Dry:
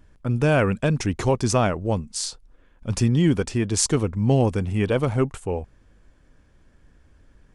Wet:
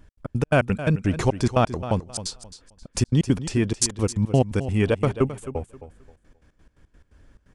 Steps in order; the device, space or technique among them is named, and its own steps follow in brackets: trance gate with a delay (step gate "x.x.x.x.x.x.xx" 173 bpm -60 dB; feedback echo 0.265 s, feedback 25%, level -13 dB); gain +1.5 dB

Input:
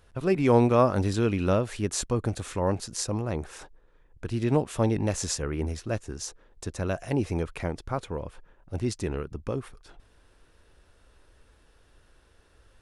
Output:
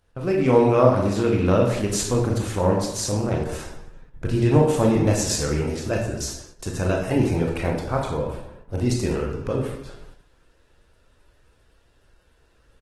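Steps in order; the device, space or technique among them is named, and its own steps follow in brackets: 3.41–4.37 low shelf 170 Hz +5.5 dB; speakerphone in a meeting room (reverb RT60 0.85 s, pre-delay 20 ms, DRR -0.5 dB; speakerphone echo 0.39 s, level -25 dB; AGC gain up to 4 dB; gate -44 dBFS, range -7 dB; Opus 16 kbps 48000 Hz)

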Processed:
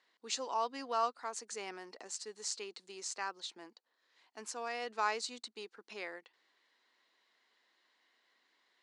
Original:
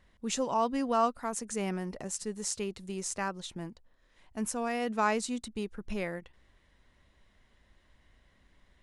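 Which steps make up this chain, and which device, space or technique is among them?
phone speaker on a table (speaker cabinet 370–7800 Hz, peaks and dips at 390 Hz -3 dB, 580 Hz -9 dB, 4400 Hz +9 dB); gain -4 dB

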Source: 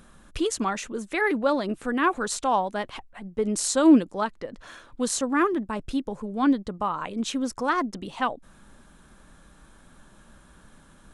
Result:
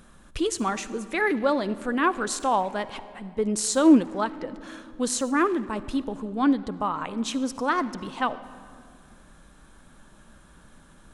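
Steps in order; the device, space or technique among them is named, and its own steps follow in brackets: saturated reverb return (on a send at -13 dB: reverb RT60 2.1 s, pre-delay 46 ms + soft clip -21.5 dBFS, distortion -9 dB)

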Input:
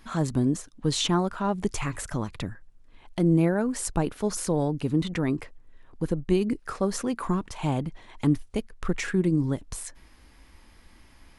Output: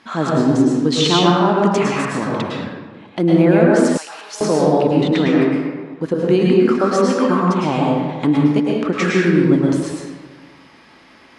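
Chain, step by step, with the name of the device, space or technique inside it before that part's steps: supermarket ceiling speaker (BPF 230–5100 Hz; reverb RT60 1.4 s, pre-delay 99 ms, DRR -3.5 dB); 3.97–4.41 Bessel high-pass 2500 Hz, order 2; gain +8.5 dB

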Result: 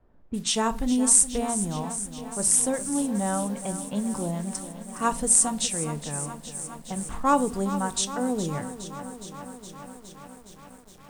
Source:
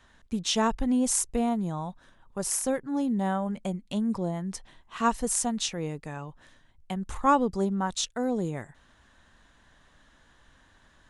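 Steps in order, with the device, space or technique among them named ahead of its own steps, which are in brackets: bell 8600 Hz +14.5 dB 0.35 oct; cassette deck with a dynamic noise filter (white noise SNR 27 dB; low-pass opened by the level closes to 450 Hz, open at -26 dBFS); shoebox room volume 230 m³, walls furnished, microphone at 0.4 m; lo-fi delay 0.415 s, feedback 80%, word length 8-bit, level -12.5 dB

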